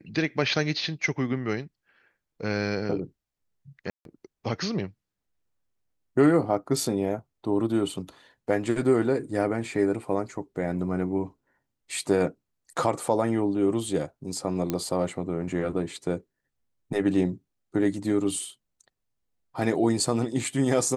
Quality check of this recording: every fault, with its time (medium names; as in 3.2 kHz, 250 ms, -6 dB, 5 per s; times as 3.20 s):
3.90–4.05 s: dropout 152 ms
14.70 s: pop -13 dBFS